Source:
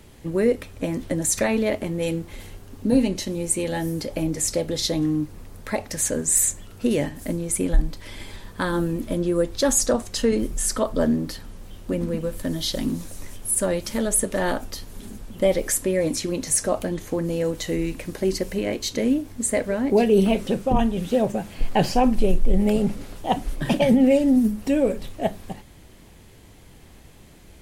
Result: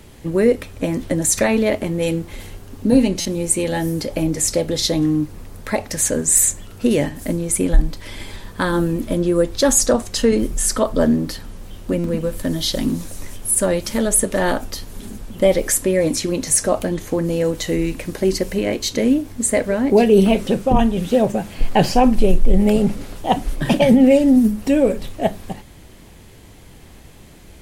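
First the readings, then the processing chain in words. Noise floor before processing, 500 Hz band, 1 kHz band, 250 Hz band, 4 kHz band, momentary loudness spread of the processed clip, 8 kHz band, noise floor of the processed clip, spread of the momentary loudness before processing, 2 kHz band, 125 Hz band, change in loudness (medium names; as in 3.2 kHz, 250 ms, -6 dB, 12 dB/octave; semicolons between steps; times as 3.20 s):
-48 dBFS, +5.0 dB, +5.0 dB, +5.0 dB, +5.0 dB, 12 LU, +5.0 dB, -43 dBFS, 12 LU, +5.0 dB, +5.0 dB, +5.0 dB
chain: buffer glitch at 3.20/11.99 s, samples 256, times 8; trim +5 dB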